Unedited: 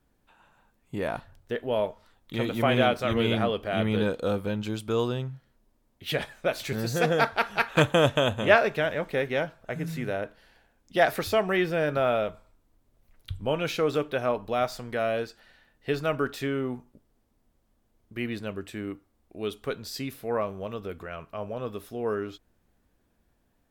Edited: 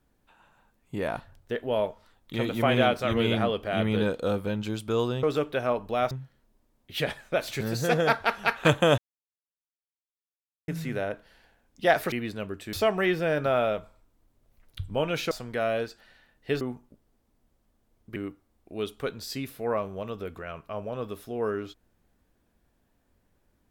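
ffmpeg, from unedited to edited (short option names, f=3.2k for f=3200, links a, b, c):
-filter_complex "[0:a]asplit=10[a][b][c][d][e][f][g][h][i][j];[a]atrim=end=5.232[k];[b]atrim=start=13.818:end=14.702[l];[c]atrim=start=5.228:end=8.1,asetpts=PTS-STARTPTS,afade=t=out:st=2.868:d=0.004:c=hsin[m];[d]atrim=start=8.1:end=9.8,asetpts=PTS-STARTPTS,volume=0[n];[e]atrim=start=9.8:end=11.242,asetpts=PTS-STARTPTS,afade=t=in:d=0.004:c=hsin[o];[f]atrim=start=18.188:end=18.802[p];[g]atrim=start=11.238:end=13.822[q];[h]atrim=start=14.698:end=16.002[r];[i]atrim=start=16.638:end=18.192[s];[j]atrim=start=18.798[t];[k][l]acrossfade=d=0.004:c1=hsin:c2=hsin[u];[m][n][o]concat=n=3:v=0:a=1[v];[u][v]acrossfade=d=0.004:c1=hsin:c2=hsin[w];[w][p]acrossfade=d=0.004:c1=hsin:c2=hsin[x];[x][q]acrossfade=d=0.004:c1=hsin:c2=hsin[y];[y][r]acrossfade=d=0.004:c1=hsin:c2=hsin[z];[z][s]acrossfade=d=0.004:c1=hsin:c2=hsin[aa];[aa][t]acrossfade=d=0.004:c1=hsin:c2=hsin"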